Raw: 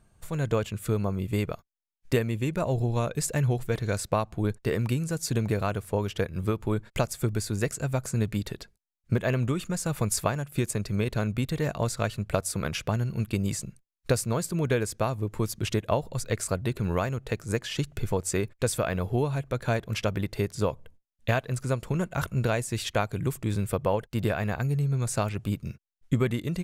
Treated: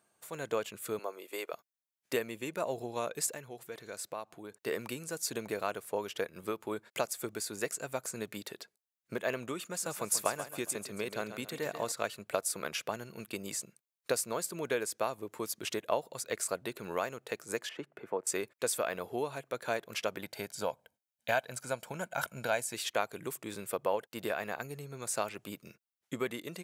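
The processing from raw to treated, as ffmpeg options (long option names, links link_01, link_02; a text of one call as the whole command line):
ffmpeg -i in.wav -filter_complex "[0:a]asettb=1/sr,asplit=3[link_01][link_02][link_03];[link_01]atrim=end=0.994[link_04];[link_02]atrim=start=0.99:end=1.53,asetpts=PTS-STARTPTS,afade=type=in:duration=0.004:curve=qsin,afade=type=out:start_time=0.536:duration=0.004:curve=qsin,highpass=frequency=360:width=0.5412,highpass=frequency=360:width=1.3066[link_05];[link_03]atrim=start=1.526[link_06];[link_04][link_05]acrossfade=duration=0.004:curve1=hsin:curve2=qsin[link_07];[link_07][link_06]acrossfade=duration=0.004:curve1=qsin:curve2=hsin,asettb=1/sr,asplit=3[link_08][link_09][link_10];[link_08]atrim=end=3.294[link_11];[link_09]atrim=start=3.29:end=4.52,asetpts=PTS-STARTPTS,afade=type=in:duration=0.004:curve=qsin,afade=type=out:start_time=1.226:duration=0.004:curve=qsin,acompressor=threshold=-36dB:ratio=2:attack=3.2:release=140:knee=1:detection=peak[link_12];[link_10]atrim=start=4.516[link_13];[link_11][link_12]acrossfade=duration=0.004:curve1=hsin:curve2=qsin[link_14];[link_14][link_13]acrossfade=duration=0.004:curve1=qsin:curve2=hsin,asettb=1/sr,asplit=3[link_15][link_16][link_17];[link_15]atrim=end=9.614[link_18];[link_16]atrim=start=9.61:end=11.92,asetpts=PTS-STARTPTS,afade=type=in:duration=0.004:curve=qsin,afade=type=out:start_time=2.306:duration=0.004:curve=qsin,aecho=1:1:137|274|411|548:0.282|0.107|0.0407|0.0155,atrim=end_sample=101871[link_19];[link_17]atrim=start=11.916[link_20];[link_18][link_19]acrossfade=duration=0.004:curve1=hsin:curve2=qsin[link_21];[link_21][link_20]acrossfade=duration=0.004:curve1=qsin:curve2=hsin,asettb=1/sr,asplit=3[link_22][link_23][link_24];[link_22]atrim=end=17.694[link_25];[link_23]atrim=start=17.69:end=18.27,asetpts=PTS-STARTPTS,afade=type=in:duration=0.004:curve=qsin,afade=type=out:start_time=0.576:duration=0.004:curve=qsin,acrossover=split=160 2200:gain=0.224 1 0.0708[link_26][link_27][link_28];[link_26][link_27][link_28]amix=inputs=3:normalize=0[link_29];[link_24]atrim=start=18.266[link_30];[link_25][link_29]acrossfade=duration=0.004:curve1=hsin:curve2=qsin[link_31];[link_31][link_30]acrossfade=duration=0.004:curve1=qsin:curve2=hsin,asettb=1/sr,asplit=3[link_32][link_33][link_34];[link_32]atrim=end=20.234[link_35];[link_33]atrim=start=20.23:end=22.74,asetpts=PTS-STARTPTS,afade=type=in:duration=0.004:curve=qsin,afade=type=out:start_time=2.506:duration=0.004:curve=qsin,aecho=1:1:1.3:0.54,atrim=end_sample=110691[link_36];[link_34]atrim=start=22.736[link_37];[link_35][link_36]acrossfade=duration=0.004:curve1=hsin:curve2=qsin[link_38];[link_38][link_37]acrossfade=duration=0.004:curve1=qsin:curve2=hsin,highpass=380,highshelf=frequency=11000:gain=7,volume=-4dB" out.wav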